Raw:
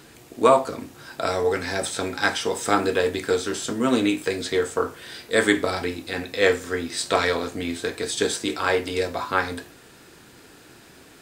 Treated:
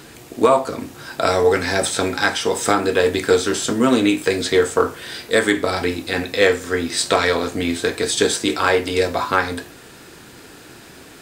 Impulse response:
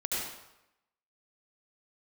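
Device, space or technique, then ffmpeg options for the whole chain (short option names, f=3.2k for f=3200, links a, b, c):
limiter into clipper: -af "alimiter=limit=-10dB:level=0:latency=1:release=433,asoftclip=type=hard:threshold=-11.5dB,volume=7dB"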